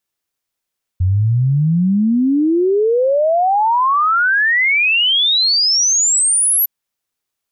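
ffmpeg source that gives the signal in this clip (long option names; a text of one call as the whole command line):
ffmpeg -f lavfi -i "aevalsrc='0.282*clip(min(t,5.66-t)/0.01,0,1)*sin(2*PI*88*5.66/log(12000/88)*(exp(log(12000/88)*t/5.66)-1))':duration=5.66:sample_rate=44100" out.wav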